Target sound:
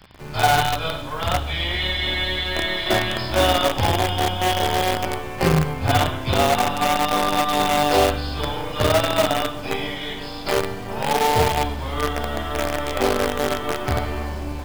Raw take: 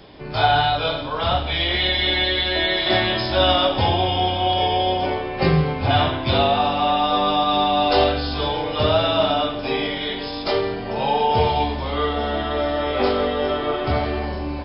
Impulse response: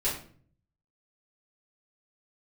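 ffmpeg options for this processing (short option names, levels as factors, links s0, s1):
-filter_complex "[0:a]highshelf=f=2500:g=-5.5,bandreject=f=3800:w=20,acrossover=split=180|1100[s0][s1][s2];[s1]acrusher=bits=4:dc=4:mix=0:aa=0.000001[s3];[s0][s3][s2]amix=inputs=3:normalize=0"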